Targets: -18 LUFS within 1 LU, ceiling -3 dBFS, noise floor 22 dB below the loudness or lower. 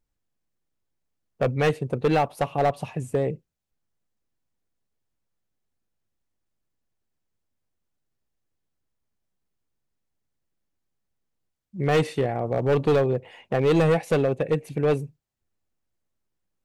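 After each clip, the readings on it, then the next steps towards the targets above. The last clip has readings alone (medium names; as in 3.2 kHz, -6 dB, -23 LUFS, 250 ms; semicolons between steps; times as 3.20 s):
clipped samples 1.3%; clipping level -15.5 dBFS; loudness -24.0 LUFS; peak level -15.5 dBFS; loudness target -18.0 LUFS
-> clip repair -15.5 dBFS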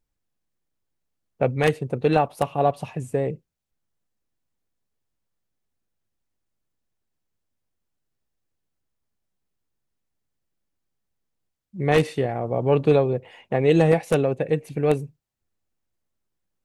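clipped samples 0.0%; loudness -22.5 LUFS; peak level -6.5 dBFS; loudness target -18.0 LUFS
-> trim +4.5 dB; peak limiter -3 dBFS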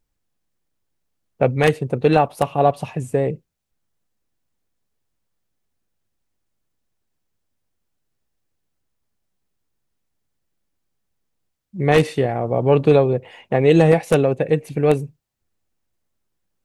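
loudness -18.5 LUFS; peak level -3.0 dBFS; noise floor -75 dBFS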